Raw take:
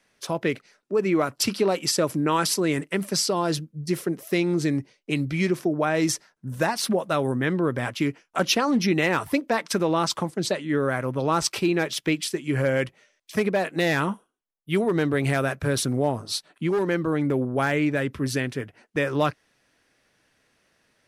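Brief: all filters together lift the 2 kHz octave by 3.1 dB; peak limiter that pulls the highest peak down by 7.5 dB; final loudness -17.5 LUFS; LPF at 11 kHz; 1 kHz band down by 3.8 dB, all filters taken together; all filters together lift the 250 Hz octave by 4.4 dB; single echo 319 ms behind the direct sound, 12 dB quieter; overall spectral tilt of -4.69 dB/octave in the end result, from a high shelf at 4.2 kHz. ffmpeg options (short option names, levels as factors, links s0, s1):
-af "lowpass=11000,equalizer=f=250:t=o:g=6.5,equalizer=f=1000:t=o:g=-7.5,equalizer=f=2000:t=o:g=5,highshelf=f=4200:g=4,alimiter=limit=0.211:level=0:latency=1,aecho=1:1:319:0.251,volume=2.11"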